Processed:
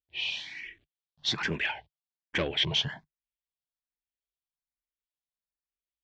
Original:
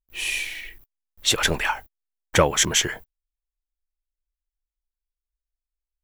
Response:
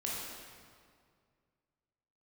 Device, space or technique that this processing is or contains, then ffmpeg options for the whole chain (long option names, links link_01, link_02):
barber-pole phaser into a guitar amplifier: -filter_complex "[0:a]asplit=2[link_01][link_02];[link_02]afreqshift=1.2[link_03];[link_01][link_03]amix=inputs=2:normalize=1,asoftclip=type=tanh:threshold=-18.5dB,highpass=96,equalizer=frequency=150:width_type=q:width=4:gain=7,equalizer=frequency=310:width_type=q:width=4:gain=-3,equalizer=frequency=500:width_type=q:width=4:gain=-7,equalizer=frequency=1300:width_type=q:width=4:gain=-9,equalizer=frequency=3300:width_type=q:width=4:gain=4,lowpass=frequency=4500:width=0.5412,lowpass=frequency=4500:width=1.3066,acrossover=split=7200[link_04][link_05];[link_05]acompressor=threshold=-58dB:ratio=4:attack=1:release=60[link_06];[link_04][link_06]amix=inputs=2:normalize=0,asettb=1/sr,asplit=3[link_07][link_08][link_09];[link_07]atrim=end=0.574[link_10];[link_08]atrim=start=0.57:end=1.42,asetpts=PTS-STARTPTS,afade=type=in:duration=0.004:curve=qsin,afade=type=out:start_time=0.846:duration=0.004:curve=qsin,equalizer=frequency=5300:width_type=o:width=0.77:gain=4[link_11];[link_09]atrim=start=1.416[link_12];[link_10][link_11]acrossfade=duration=0.004:curve1=hsin:curve2=qsin[link_13];[link_13][link_12]acrossfade=duration=0.004:curve1=qsin:curve2=hsin,volume=-1.5dB"